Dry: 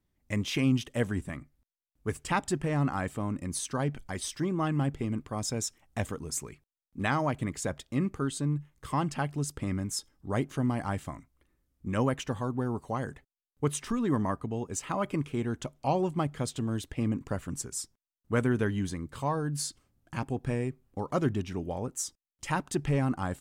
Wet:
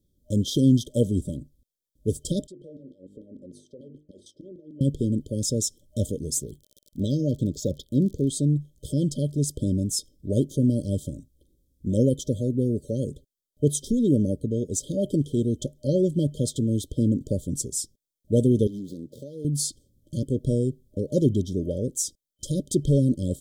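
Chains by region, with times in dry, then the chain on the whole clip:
0:02.47–0:04.81: auto-filter band-pass saw down 6.7 Hz 250–1,600 Hz + mains-hum notches 50/100/150/200/250/300/350/400/450 Hz + downward compressor 12 to 1, threshold −46 dBFS
0:06.42–0:08.27: phaser swept by the level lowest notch 410 Hz, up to 2,100 Hz, full sweep at −30.5 dBFS + surface crackle 50 per second −42 dBFS
0:18.67–0:19.45: running median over 15 samples + high-pass filter 210 Hz + downward compressor 5 to 1, threshold −39 dBFS
whole clip: brick-wall band-stop 610–3,100 Hz; parametric band 4,100 Hz −3.5 dB 0.74 octaves; level +7.5 dB

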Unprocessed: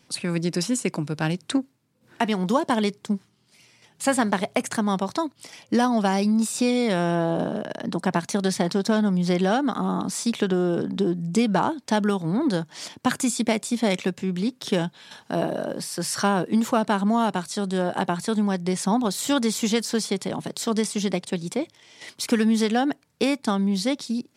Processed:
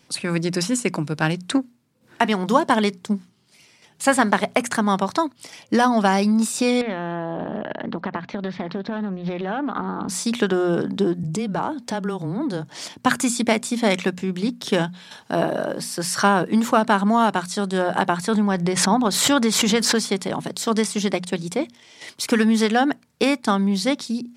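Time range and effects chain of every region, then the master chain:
0:06.81–0:10.09: low-pass filter 3,200 Hz 24 dB per octave + downward compressor 10 to 1, threshold −24 dBFS + highs frequency-modulated by the lows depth 0.23 ms
0:11.23–0:12.81: parametric band 440 Hz +4.5 dB 2.4 octaves + downward compressor 3 to 1, threshold −27 dBFS + frequency shifter −13 Hz
0:18.28–0:19.96: high-shelf EQ 4,900 Hz −7.5 dB + background raised ahead of every attack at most 39 dB per second
whole clip: mains-hum notches 60/120/180/240 Hz; dynamic equaliser 1,400 Hz, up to +5 dB, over −37 dBFS, Q 0.84; level +2.5 dB

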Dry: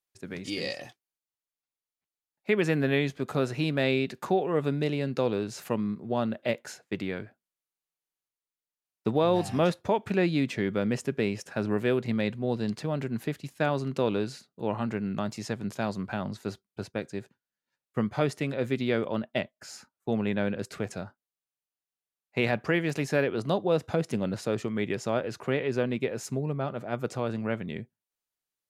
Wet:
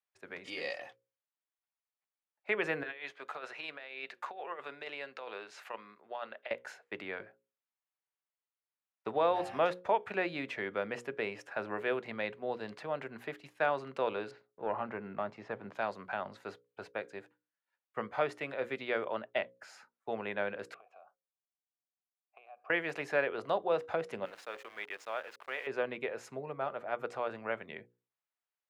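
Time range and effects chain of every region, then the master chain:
0:02.83–0:06.51: high-pass filter 1,400 Hz 6 dB per octave + high-shelf EQ 10,000 Hz −11 dB + compressor whose output falls as the input rises −37 dBFS, ratio −0.5
0:14.31–0:15.75: leveller curve on the samples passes 1 + head-to-tape spacing loss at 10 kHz 28 dB + one half of a high-frequency compander decoder only
0:20.74–0:22.70: downward compressor 12 to 1, threshold −36 dBFS + formant filter a
0:24.25–0:25.67: high-pass filter 1,400 Hz 6 dB per octave + centre clipping without the shift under −44.5 dBFS
whole clip: three-way crossover with the lows and the highs turned down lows −20 dB, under 480 Hz, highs −16 dB, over 2,900 Hz; mains-hum notches 60/120/180/240/300/360/420/480/540 Hz

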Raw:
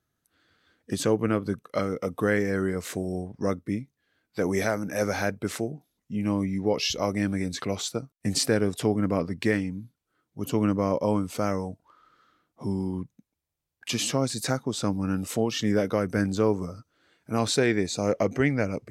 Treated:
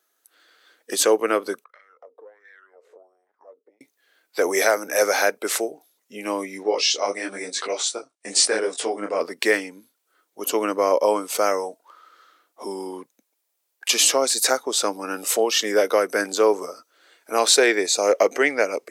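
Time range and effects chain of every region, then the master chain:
0:01.64–0:03.81: downward compressor 12 to 1, threshold −36 dBFS + LFO wah 1.4 Hz 430–1,900 Hz, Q 6.5 + tube saturation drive 37 dB, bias 0.6
0:06.63–0:09.21: linear-phase brick-wall low-pass 10,000 Hz + micro pitch shift up and down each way 36 cents
whole clip: high-pass filter 400 Hz 24 dB per octave; high-shelf EQ 6,400 Hz +8 dB; level +8.5 dB

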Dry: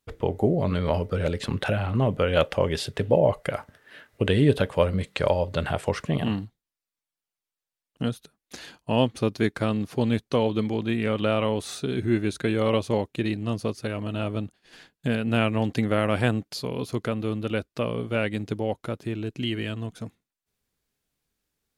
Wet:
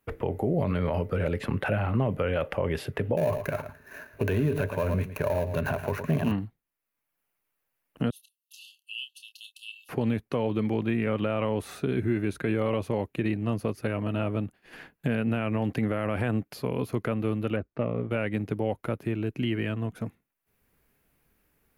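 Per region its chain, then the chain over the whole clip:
0:03.17–0:06.32: gap after every zero crossing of 0.14 ms + EQ curve with evenly spaced ripples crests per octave 1.5, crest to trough 8 dB + single-tap delay 111 ms −14.5 dB
0:08.10–0:09.89: linear-phase brick-wall high-pass 2,600 Hz + double-tracking delay 28 ms −9.5 dB
0:17.56–0:18.11: head-to-tape spacing loss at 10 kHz 37 dB + highs frequency-modulated by the lows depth 0.22 ms
whole clip: flat-topped bell 5,400 Hz −11.5 dB; brickwall limiter −16.5 dBFS; multiband upward and downward compressor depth 40%

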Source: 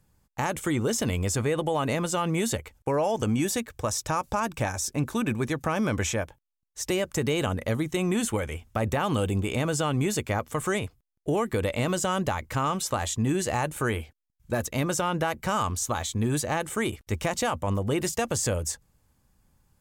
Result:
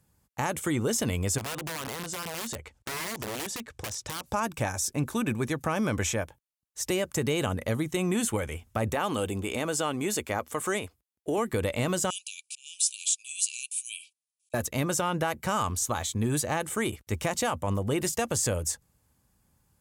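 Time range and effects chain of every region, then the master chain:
0:01.38–0:04.26: low-pass filter 7,300 Hz + wrap-around overflow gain 21 dB + downward compressor 4 to 1, threshold −32 dBFS
0:08.93–0:11.38: high-pass filter 59 Hz + parametric band 130 Hz −11.5 dB 0.86 octaves
0:12.10–0:14.54: high-shelf EQ 6,700 Hz +10 dB + volume swells 198 ms + linear-phase brick-wall band-pass 2,300–11,000 Hz
whole clip: high-pass filter 53 Hz; parametric band 11,000 Hz +4.5 dB 1 octave; level −1.5 dB

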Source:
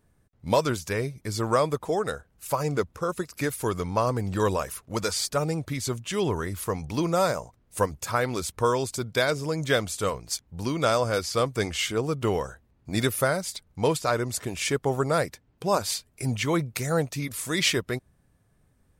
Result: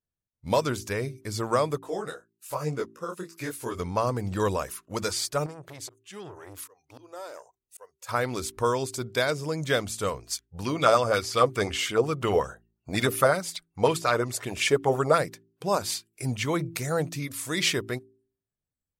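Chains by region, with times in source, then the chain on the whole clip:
0:01.79–0:03.79: downward expander −51 dBFS + parametric band 750 Hz −3 dB 0.43 octaves + micro pitch shift up and down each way 39 cents
0:05.46–0:08.09: volume swells 794 ms + downward compressor 5 to 1, threshold −32 dBFS + saturating transformer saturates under 780 Hz
0:10.55–0:15.18: dynamic equaliser 1,200 Hz, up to +5 dB, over −45 dBFS, Q 7.8 + auto-filter bell 5.5 Hz 450–3,200 Hz +10 dB
whole clip: noise reduction from a noise print of the clip's start 26 dB; hum removal 55.56 Hz, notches 7; level −1.5 dB

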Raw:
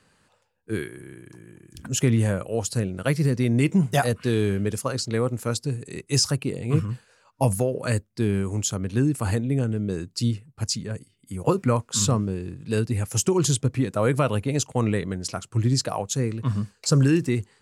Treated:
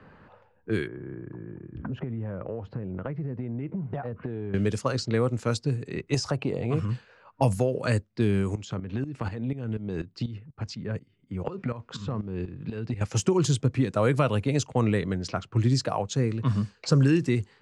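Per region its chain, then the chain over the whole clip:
0:00.87–0:04.54: low-pass filter 1,200 Hz + downward compressor 16 to 1, threshold −32 dBFS
0:06.14–0:06.83: parametric band 690 Hz +10.5 dB 1.1 octaves + downward compressor 2 to 1, threshold −26 dBFS
0:08.55–0:13.01: downward compressor 10 to 1, threshold −25 dBFS + shaped tremolo saw up 4.1 Hz, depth 80%
whole clip: low-pass that shuts in the quiet parts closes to 1,500 Hz, open at −20.5 dBFS; low-pass filter 6,100 Hz 12 dB per octave; multiband upward and downward compressor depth 40%

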